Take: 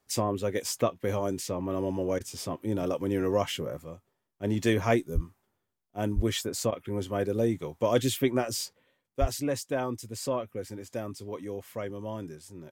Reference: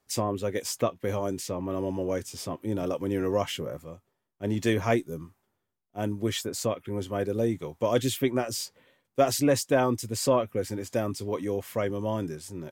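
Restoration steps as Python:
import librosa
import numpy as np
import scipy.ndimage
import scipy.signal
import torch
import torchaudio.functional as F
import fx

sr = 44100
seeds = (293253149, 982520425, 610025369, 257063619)

y = fx.fix_deplosive(x, sr, at_s=(5.14, 6.15, 9.2))
y = fx.fix_interpolate(y, sr, at_s=(2.19, 6.71), length_ms=12.0)
y = fx.gain(y, sr, db=fx.steps((0.0, 0.0), (8.73, 7.0)))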